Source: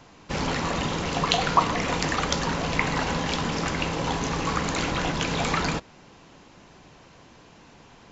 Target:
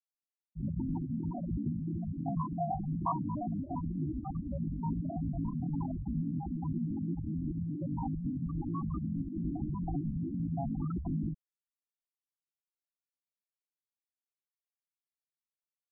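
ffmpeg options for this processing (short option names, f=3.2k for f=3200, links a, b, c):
-filter_complex "[0:a]lowshelf=f=89:g=-3.5,atempo=0.51,equalizer=f=470:w=4.1:g=-13.5,acrossover=split=250|840[a][b][c];[c]acompressor=threshold=-41dB:ratio=16[d];[a][b][d]amix=inputs=3:normalize=0,aresample=16000,asoftclip=type=tanh:threshold=-24.5dB,aresample=44100,afftfilt=real='re*gte(hypot(re,im),0.1)':imag='im*gte(hypot(re,im),0.1)':win_size=1024:overlap=0.75"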